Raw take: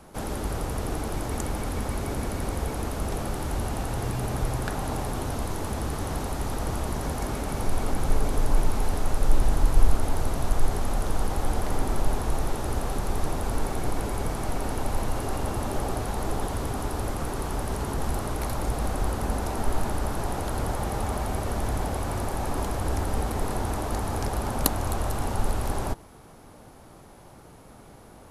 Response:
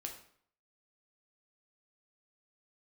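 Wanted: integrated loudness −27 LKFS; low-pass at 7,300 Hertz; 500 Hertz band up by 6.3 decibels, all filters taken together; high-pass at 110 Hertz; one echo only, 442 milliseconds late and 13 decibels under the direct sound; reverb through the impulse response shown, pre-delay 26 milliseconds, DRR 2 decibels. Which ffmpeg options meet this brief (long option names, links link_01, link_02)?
-filter_complex "[0:a]highpass=110,lowpass=7300,equalizer=frequency=500:width_type=o:gain=8,aecho=1:1:442:0.224,asplit=2[link_01][link_02];[1:a]atrim=start_sample=2205,adelay=26[link_03];[link_02][link_03]afir=irnorm=-1:irlink=0,volume=0dB[link_04];[link_01][link_04]amix=inputs=2:normalize=0"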